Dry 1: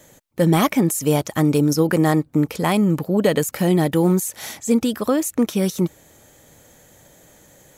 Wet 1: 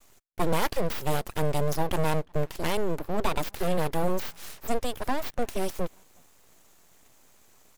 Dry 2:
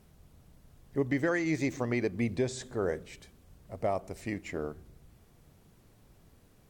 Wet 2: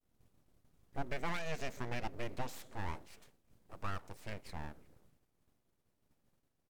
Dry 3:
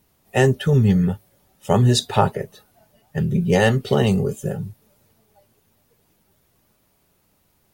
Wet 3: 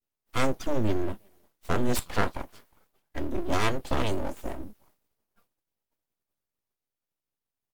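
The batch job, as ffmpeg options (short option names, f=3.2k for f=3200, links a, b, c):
-filter_complex "[0:a]asplit=2[a][b];[b]adelay=360,highpass=300,lowpass=3.4k,asoftclip=type=hard:threshold=-10dB,volume=-28dB[c];[a][c]amix=inputs=2:normalize=0,agate=range=-33dB:threshold=-51dB:ratio=3:detection=peak,aeval=exprs='abs(val(0))':c=same,volume=-6.5dB"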